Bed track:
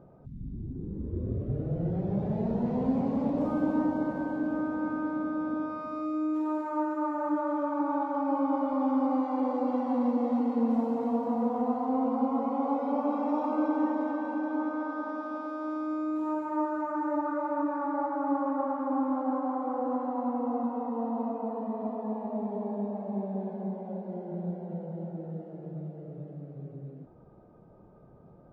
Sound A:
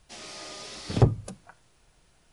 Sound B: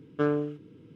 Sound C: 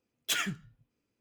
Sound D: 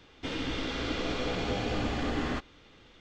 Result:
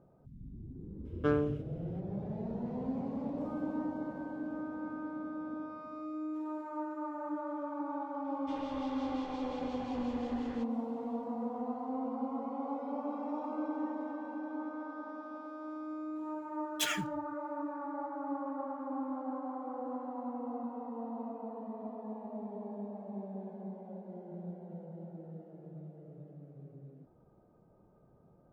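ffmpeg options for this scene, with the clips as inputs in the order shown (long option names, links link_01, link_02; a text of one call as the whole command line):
ffmpeg -i bed.wav -i cue0.wav -i cue1.wav -i cue2.wav -i cue3.wav -filter_complex "[0:a]volume=-9dB[link_01];[4:a]acrossover=split=2400[link_02][link_03];[link_02]aeval=exprs='val(0)*(1-0.5/2+0.5/2*cos(2*PI*5.7*n/s))':channel_layout=same[link_04];[link_03]aeval=exprs='val(0)*(1-0.5/2-0.5/2*cos(2*PI*5.7*n/s))':channel_layout=same[link_05];[link_04][link_05]amix=inputs=2:normalize=0[link_06];[3:a]acrusher=bits=9:mode=log:mix=0:aa=0.000001[link_07];[2:a]atrim=end=0.95,asetpts=PTS-STARTPTS,volume=-3.5dB,afade=type=in:duration=0.004:curve=hsin,afade=type=out:start_time=0.946:duration=0.004:curve=hsin,adelay=1050[link_08];[link_06]atrim=end=3,asetpts=PTS-STARTPTS,volume=-14dB,afade=type=in:duration=0.004:curve=hsin,afade=type=out:start_time=2.996:duration=0.004:curve=hsin,adelay=8240[link_09];[link_07]atrim=end=1.2,asetpts=PTS-STARTPTS,volume=-3dB,afade=type=in:duration=0.004:curve=hsin,afade=type=out:start_time=1.196:duration=0.004:curve=hsin,adelay=16510[link_10];[link_01][link_08][link_09][link_10]amix=inputs=4:normalize=0" out.wav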